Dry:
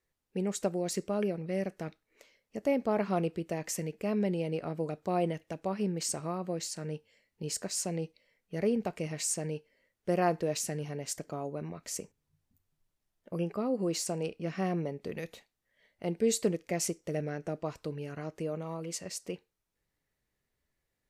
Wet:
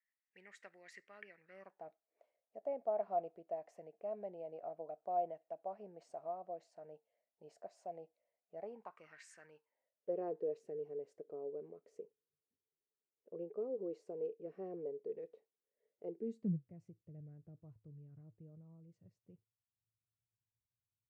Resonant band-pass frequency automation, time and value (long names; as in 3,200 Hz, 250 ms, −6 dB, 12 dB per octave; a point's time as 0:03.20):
resonant band-pass, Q 7.5
0:01.39 1,900 Hz
0:01.87 680 Hz
0:08.57 680 Hz
0:09.29 1,800 Hz
0:10.16 440 Hz
0:16.10 440 Hz
0:16.71 110 Hz